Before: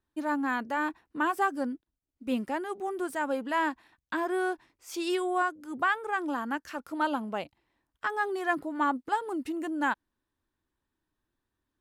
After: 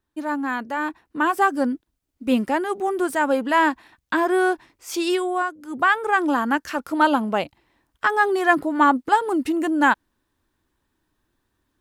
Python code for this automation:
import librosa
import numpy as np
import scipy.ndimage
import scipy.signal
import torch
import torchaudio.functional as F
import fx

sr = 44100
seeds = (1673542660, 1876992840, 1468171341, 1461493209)

y = fx.gain(x, sr, db=fx.line((0.78, 4.0), (1.66, 10.0), (4.92, 10.0), (5.48, 3.0), (6.06, 11.0)))